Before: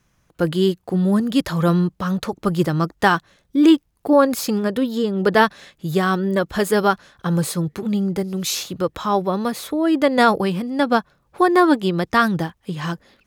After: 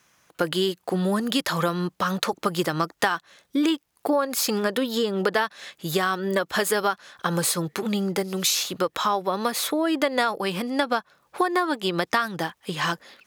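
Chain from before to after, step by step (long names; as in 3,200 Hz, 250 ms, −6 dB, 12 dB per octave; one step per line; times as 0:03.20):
high-pass filter 810 Hz 6 dB per octave
downward compressor 8 to 1, threshold −27 dBFS, peak gain reduction 15.5 dB
level +7.5 dB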